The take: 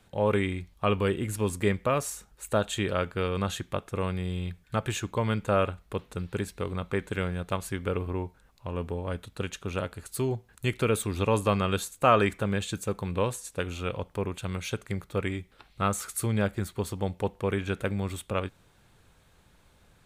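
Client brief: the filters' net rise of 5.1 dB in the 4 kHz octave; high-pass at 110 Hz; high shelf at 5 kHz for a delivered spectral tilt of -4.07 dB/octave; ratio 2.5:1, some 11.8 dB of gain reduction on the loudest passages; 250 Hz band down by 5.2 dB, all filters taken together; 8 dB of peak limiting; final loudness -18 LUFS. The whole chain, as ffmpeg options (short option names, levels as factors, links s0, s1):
-af "highpass=110,equalizer=f=250:t=o:g=-7,equalizer=f=4000:t=o:g=9,highshelf=f=5000:g=-5.5,acompressor=threshold=0.0224:ratio=2.5,volume=11.2,alimiter=limit=0.794:level=0:latency=1"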